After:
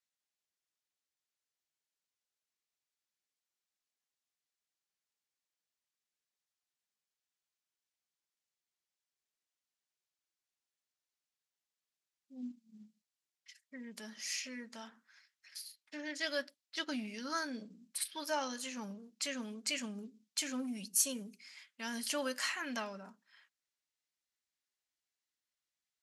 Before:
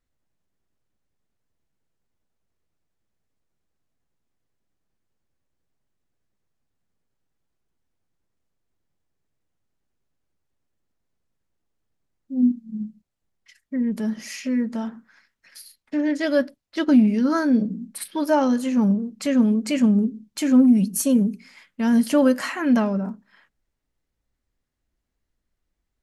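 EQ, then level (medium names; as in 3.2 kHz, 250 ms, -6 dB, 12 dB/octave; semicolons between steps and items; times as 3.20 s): band-pass filter 5.4 kHz, Q 0.69; -1.5 dB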